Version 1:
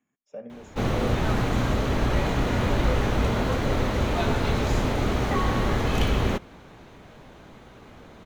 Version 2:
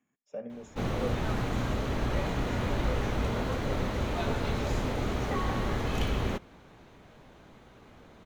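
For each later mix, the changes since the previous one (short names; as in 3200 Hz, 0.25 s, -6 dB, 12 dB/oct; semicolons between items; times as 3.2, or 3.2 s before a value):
background -6.5 dB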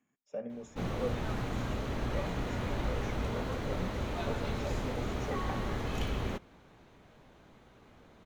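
background -4.5 dB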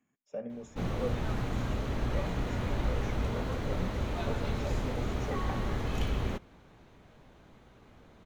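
master: add low shelf 140 Hz +4.5 dB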